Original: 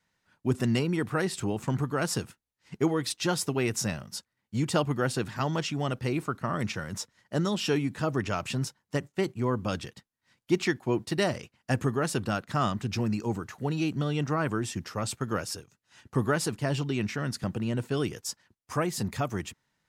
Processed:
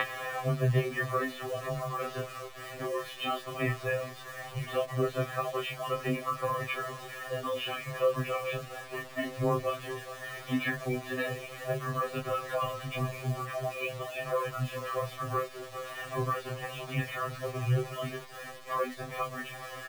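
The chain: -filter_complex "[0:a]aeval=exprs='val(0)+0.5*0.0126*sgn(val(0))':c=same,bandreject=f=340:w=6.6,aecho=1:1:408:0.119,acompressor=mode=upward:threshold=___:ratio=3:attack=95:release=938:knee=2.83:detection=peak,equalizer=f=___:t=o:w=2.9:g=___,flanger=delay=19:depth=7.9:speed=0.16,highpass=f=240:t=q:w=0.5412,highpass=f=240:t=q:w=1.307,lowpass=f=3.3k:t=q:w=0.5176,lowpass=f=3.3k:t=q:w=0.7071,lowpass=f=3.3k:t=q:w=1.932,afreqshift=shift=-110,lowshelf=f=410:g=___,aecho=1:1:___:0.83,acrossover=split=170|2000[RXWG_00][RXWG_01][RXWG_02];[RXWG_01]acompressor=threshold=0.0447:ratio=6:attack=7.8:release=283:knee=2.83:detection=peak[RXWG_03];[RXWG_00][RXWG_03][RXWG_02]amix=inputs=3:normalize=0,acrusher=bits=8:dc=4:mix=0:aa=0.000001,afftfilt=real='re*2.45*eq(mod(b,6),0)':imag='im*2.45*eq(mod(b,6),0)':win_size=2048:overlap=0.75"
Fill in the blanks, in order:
0.02, 530, 12, -5.5, 1.7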